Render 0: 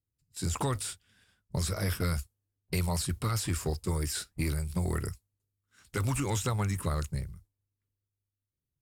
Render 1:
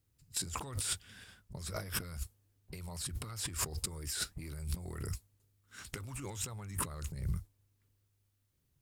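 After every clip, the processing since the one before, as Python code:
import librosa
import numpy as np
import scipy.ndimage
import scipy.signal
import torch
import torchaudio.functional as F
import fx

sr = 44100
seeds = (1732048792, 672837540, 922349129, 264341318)

y = fx.over_compress(x, sr, threshold_db=-42.0, ratio=-1.0)
y = F.gain(torch.from_numpy(y), 1.5).numpy()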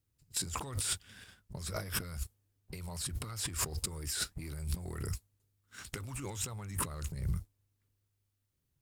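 y = fx.leveller(x, sr, passes=1)
y = F.gain(torch.from_numpy(y), -2.0).numpy()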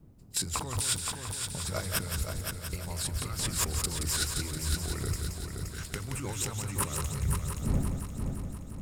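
y = fx.dmg_wind(x, sr, seeds[0], corner_hz=160.0, level_db=-47.0)
y = fx.echo_heads(y, sr, ms=174, heads='first and third', feedback_pct=60, wet_db=-6.5)
y = F.gain(torch.from_numpy(y), 4.0).numpy()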